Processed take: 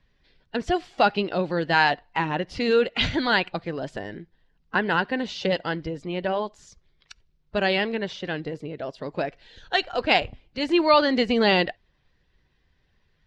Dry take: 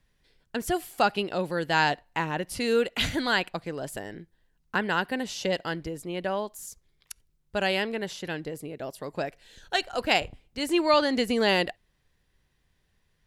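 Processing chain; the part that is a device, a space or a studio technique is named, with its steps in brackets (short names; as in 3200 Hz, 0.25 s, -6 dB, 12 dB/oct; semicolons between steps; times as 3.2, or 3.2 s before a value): clip after many re-uploads (LPF 5000 Hz 24 dB/oct; bin magnitudes rounded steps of 15 dB); gain +4 dB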